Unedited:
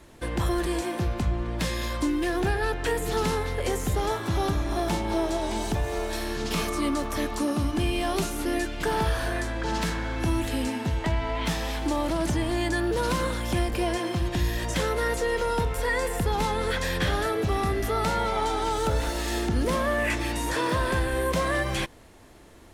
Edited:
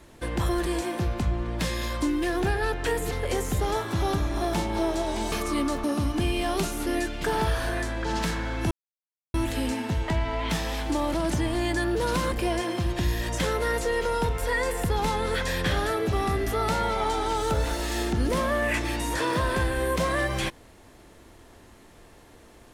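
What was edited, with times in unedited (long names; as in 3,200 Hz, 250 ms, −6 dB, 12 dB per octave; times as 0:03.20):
0:03.11–0:03.46: remove
0:05.67–0:06.59: remove
0:07.11–0:07.43: remove
0:10.30: splice in silence 0.63 s
0:13.28–0:13.68: remove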